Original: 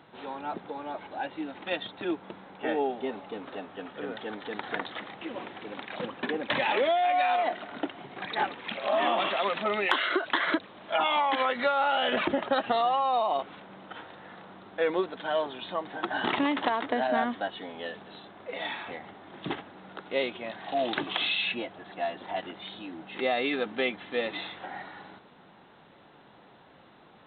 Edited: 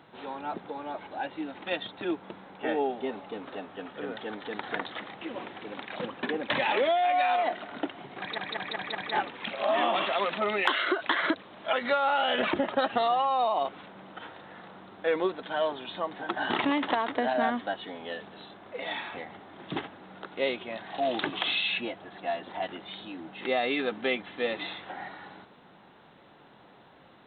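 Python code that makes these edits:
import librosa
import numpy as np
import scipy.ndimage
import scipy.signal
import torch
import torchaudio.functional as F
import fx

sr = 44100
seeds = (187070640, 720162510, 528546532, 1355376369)

y = fx.edit(x, sr, fx.stutter(start_s=8.19, slice_s=0.19, count=5),
    fx.cut(start_s=10.97, length_s=0.5), tone=tone)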